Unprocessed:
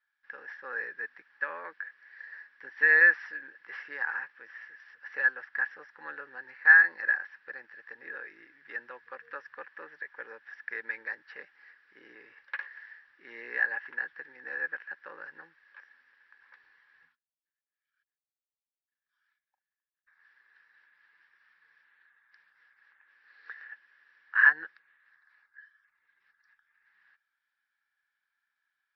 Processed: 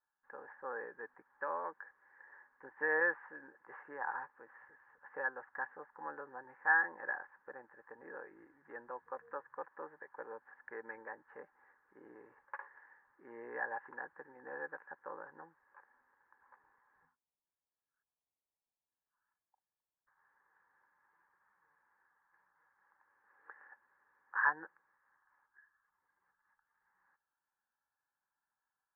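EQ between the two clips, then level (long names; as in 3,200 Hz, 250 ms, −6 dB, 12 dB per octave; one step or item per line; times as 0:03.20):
transistor ladder low-pass 1,100 Hz, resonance 50%
low-shelf EQ 360 Hz +5 dB
+7.0 dB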